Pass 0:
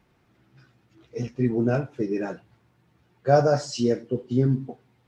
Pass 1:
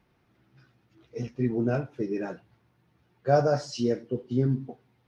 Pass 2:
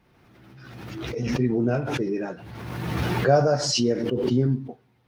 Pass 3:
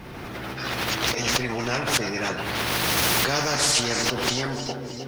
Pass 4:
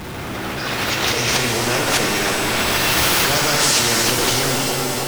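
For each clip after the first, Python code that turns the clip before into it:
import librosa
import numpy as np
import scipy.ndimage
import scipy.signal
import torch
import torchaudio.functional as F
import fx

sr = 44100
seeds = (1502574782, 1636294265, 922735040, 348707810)

y1 = fx.peak_eq(x, sr, hz=7500.0, db=-8.5, octaves=0.27)
y1 = y1 * 10.0 ** (-3.5 / 20.0)
y2 = fx.pre_swell(y1, sr, db_per_s=30.0)
y2 = y2 * 10.0 ** (2.5 / 20.0)
y3 = fx.echo_feedback(y2, sr, ms=311, feedback_pct=50, wet_db=-21.5)
y3 = fx.spectral_comp(y3, sr, ratio=4.0)
y4 = y3 + 0.5 * 10.0 ** (-31.5 / 20.0) * np.sign(y3)
y4 = fx.rev_shimmer(y4, sr, seeds[0], rt60_s=2.9, semitones=7, shimmer_db=-2, drr_db=2.5)
y4 = y4 * 10.0 ** (2.0 / 20.0)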